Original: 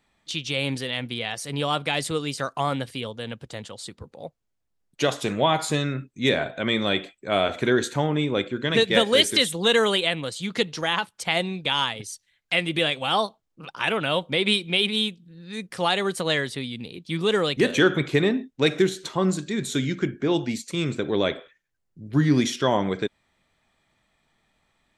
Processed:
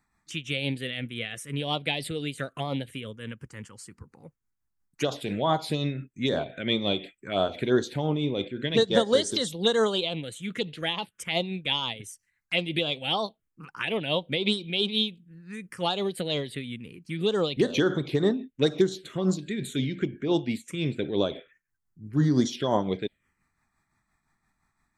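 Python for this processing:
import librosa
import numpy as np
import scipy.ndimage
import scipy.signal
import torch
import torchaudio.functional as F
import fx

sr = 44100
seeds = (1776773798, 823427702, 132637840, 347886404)

y = fx.env_phaser(x, sr, low_hz=530.0, high_hz=2500.0, full_db=-16.5)
y = y * (1.0 - 0.47 / 2.0 + 0.47 / 2.0 * np.cos(2.0 * np.pi * 5.8 * (np.arange(len(y)) / sr)))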